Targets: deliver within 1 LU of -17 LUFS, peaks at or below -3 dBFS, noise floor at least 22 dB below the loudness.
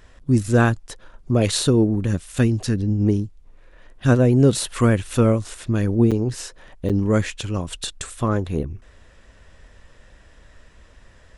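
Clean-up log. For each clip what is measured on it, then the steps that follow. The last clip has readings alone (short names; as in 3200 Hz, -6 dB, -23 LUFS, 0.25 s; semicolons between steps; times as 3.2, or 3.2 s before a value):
dropouts 2; longest dropout 6.8 ms; loudness -20.5 LUFS; peak -4.5 dBFS; loudness target -17.0 LUFS
-> interpolate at 6.11/6.89, 6.8 ms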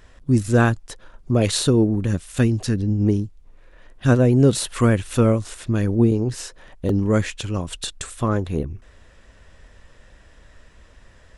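dropouts 0; loudness -20.5 LUFS; peak -4.5 dBFS; loudness target -17.0 LUFS
-> gain +3.5 dB; limiter -3 dBFS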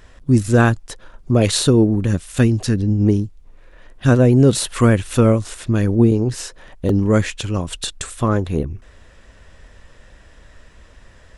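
loudness -17.5 LUFS; peak -3.0 dBFS; noise floor -47 dBFS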